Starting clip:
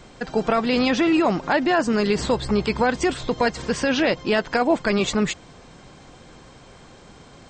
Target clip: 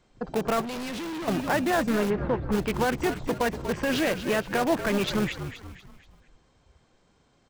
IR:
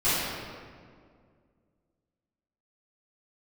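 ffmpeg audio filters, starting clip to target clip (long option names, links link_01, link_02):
-filter_complex "[0:a]afwtdn=0.0282,asplit=2[link_01][link_02];[link_02]aeval=exprs='(mod(8.41*val(0)+1,2)-1)/8.41':channel_layout=same,volume=-7.5dB[link_03];[link_01][link_03]amix=inputs=2:normalize=0,asplit=5[link_04][link_05][link_06][link_07][link_08];[link_05]adelay=239,afreqshift=-63,volume=-10dB[link_09];[link_06]adelay=478,afreqshift=-126,volume=-17.5dB[link_10];[link_07]adelay=717,afreqshift=-189,volume=-25.1dB[link_11];[link_08]adelay=956,afreqshift=-252,volume=-32.6dB[link_12];[link_04][link_09][link_10][link_11][link_12]amix=inputs=5:normalize=0,asettb=1/sr,asplit=3[link_13][link_14][link_15];[link_13]atrim=end=0.614[link_16];[link_14]atrim=start=0.61:end=1.28,asetpts=PTS-STARTPTS,afade=type=in:duration=0.004:curve=qsin,afade=type=out:start_time=0.666:duration=0.004:curve=qsin,volume=27dB,asoftclip=hard,volume=-27dB[link_17];[link_15]atrim=start=1.276[link_18];[link_16][link_17]acrossfade=duration=0.004:curve1=hsin:curve2=qsin[link_19];[link_19][link_18]acrossfade=duration=0.004:curve1=qsin:curve2=hsin,asplit=3[link_20][link_21][link_22];[link_20]afade=type=out:start_time=2.09:duration=0.02[link_23];[link_21]lowpass=1700,afade=type=in:start_time=2.09:duration=0.02,afade=type=out:start_time=2.51:duration=0.02[link_24];[link_22]afade=type=in:start_time=2.51:duration=0.02[link_25];[link_23][link_24][link_25]amix=inputs=3:normalize=0,volume=-5.5dB"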